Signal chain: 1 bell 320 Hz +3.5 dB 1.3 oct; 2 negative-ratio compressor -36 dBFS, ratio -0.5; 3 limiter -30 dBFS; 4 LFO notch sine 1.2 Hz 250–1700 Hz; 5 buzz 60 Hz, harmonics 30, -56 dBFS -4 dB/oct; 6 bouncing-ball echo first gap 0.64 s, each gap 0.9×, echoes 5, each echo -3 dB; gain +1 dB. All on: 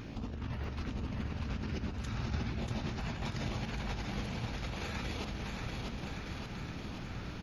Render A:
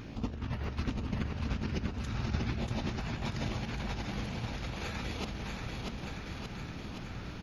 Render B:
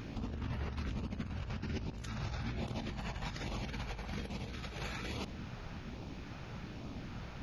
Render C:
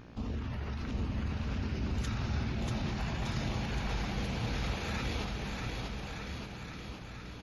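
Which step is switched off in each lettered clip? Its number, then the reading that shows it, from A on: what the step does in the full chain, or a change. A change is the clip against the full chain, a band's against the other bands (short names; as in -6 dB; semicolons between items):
3, crest factor change +3.5 dB; 6, echo-to-direct 0.0 dB to none; 2, crest factor change -1.5 dB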